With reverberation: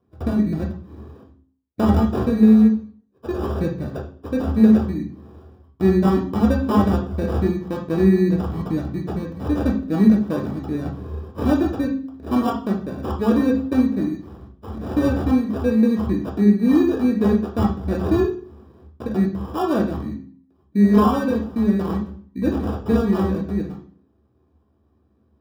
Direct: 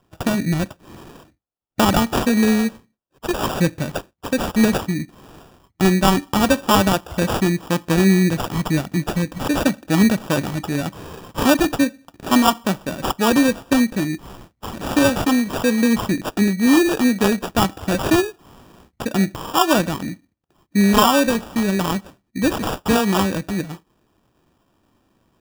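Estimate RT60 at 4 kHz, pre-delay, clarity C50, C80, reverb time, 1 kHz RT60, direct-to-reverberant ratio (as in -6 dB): 0.40 s, 3 ms, 7.5 dB, 12.0 dB, 0.50 s, 0.45 s, 0.0 dB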